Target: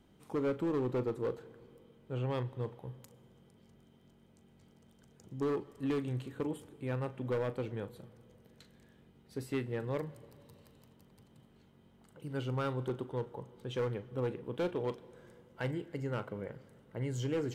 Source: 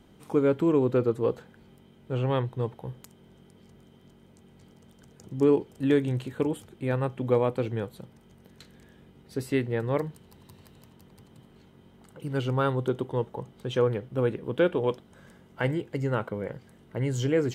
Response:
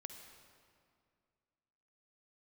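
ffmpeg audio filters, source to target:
-filter_complex "[0:a]volume=20dB,asoftclip=hard,volume=-20dB,asplit=2[link_01][link_02];[1:a]atrim=start_sample=2205,asetrate=38808,aresample=44100,adelay=40[link_03];[link_02][link_03]afir=irnorm=-1:irlink=0,volume=-9.5dB[link_04];[link_01][link_04]amix=inputs=2:normalize=0,volume=-8.5dB"

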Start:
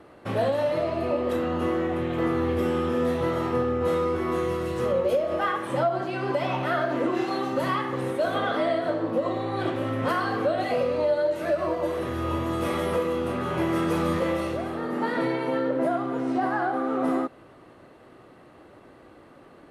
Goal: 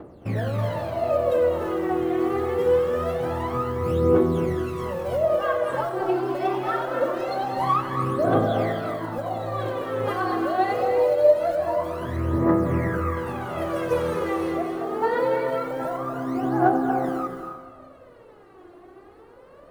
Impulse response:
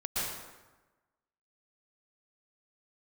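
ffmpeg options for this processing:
-filter_complex "[0:a]asettb=1/sr,asplit=3[link_01][link_02][link_03];[link_01]atrim=end=12.164[link_04];[link_02]atrim=start=12.16:end=13.17,asetpts=PTS-STARTPTS,afade=type=in:duration=0.004:curve=qsin,afade=type=out:start_time=1.006:duration=0.004:curve=qsin,highshelf=frequency=2500:width_type=q:width=3:gain=-9.5[link_05];[link_03]atrim=start=13.166[link_06];[link_04][link_05]acrossfade=duration=0.004:curve1=hsin:curve2=qsin[link_07];[link_07][link_06]acrossfade=duration=0.004:curve1=qsin:curve2=hsin,acrossover=split=1200[link_08][link_09];[link_08]acontrast=56[link_10];[link_10][link_09]amix=inputs=2:normalize=0,acrusher=bits=9:mode=log:mix=0:aa=0.000001,aphaser=in_gain=1:out_gain=1:delay=2.9:decay=0.79:speed=0.24:type=triangular,asplit=2[link_11][link_12];[1:a]atrim=start_sample=2205,adelay=91[link_13];[link_12][link_13]afir=irnorm=-1:irlink=0,volume=-11dB[link_14];[link_11][link_14]amix=inputs=2:normalize=0,volume=-8.5dB"

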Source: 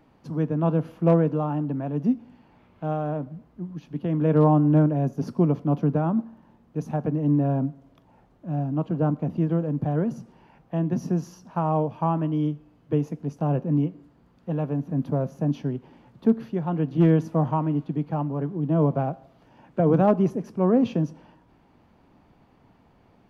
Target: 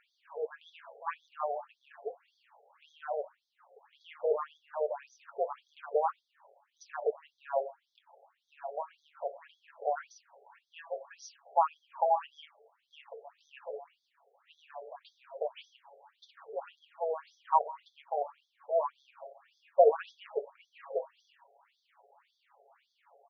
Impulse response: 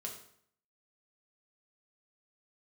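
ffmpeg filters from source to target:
-filter_complex "[0:a]aecho=1:1:7.2:0.63,asplit=2[link_01][link_02];[1:a]atrim=start_sample=2205,asetrate=39249,aresample=44100,adelay=20[link_03];[link_02][link_03]afir=irnorm=-1:irlink=0,volume=-10.5dB[link_04];[link_01][link_04]amix=inputs=2:normalize=0,afftfilt=real='re*between(b*sr/1024,550*pow(4700/550,0.5+0.5*sin(2*PI*1.8*pts/sr))/1.41,550*pow(4700/550,0.5+0.5*sin(2*PI*1.8*pts/sr))*1.41)':imag='im*between(b*sr/1024,550*pow(4700/550,0.5+0.5*sin(2*PI*1.8*pts/sr))/1.41,550*pow(4700/550,0.5+0.5*sin(2*PI*1.8*pts/sr))*1.41)':win_size=1024:overlap=0.75,volume=1.5dB"

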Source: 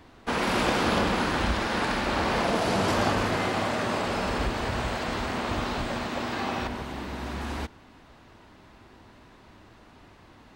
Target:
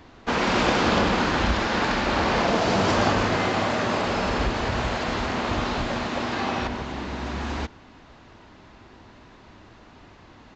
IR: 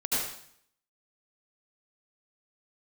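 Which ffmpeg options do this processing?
-af "aresample=16000,aresample=44100,volume=3.5dB"

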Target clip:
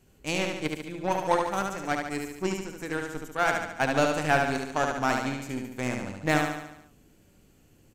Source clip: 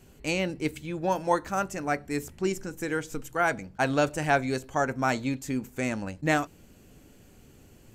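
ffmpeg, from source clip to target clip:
ffmpeg -i in.wav -af "aeval=exprs='0.299*(cos(1*acos(clip(val(0)/0.299,-1,1)))-cos(1*PI/2))+0.00668*(cos(6*acos(clip(val(0)/0.299,-1,1)))-cos(6*PI/2))+0.0237*(cos(7*acos(clip(val(0)/0.299,-1,1)))-cos(7*PI/2))':channel_layout=same,aecho=1:1:72|144|216|288|360|432|504:0.631|0.347|0.191|0.105|0.0577|0.0318|0.0175" out.wav

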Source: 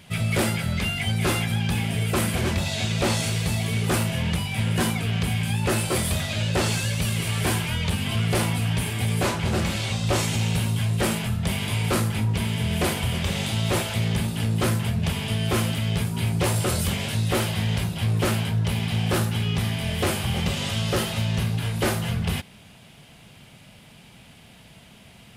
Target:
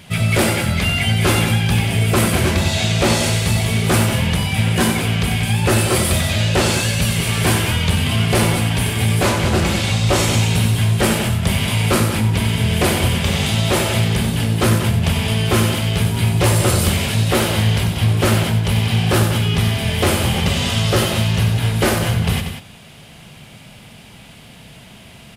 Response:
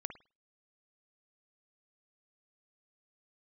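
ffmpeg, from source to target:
-af "aecho=1:1:93.29|186.6:0.398|0.316,volume=7dB"

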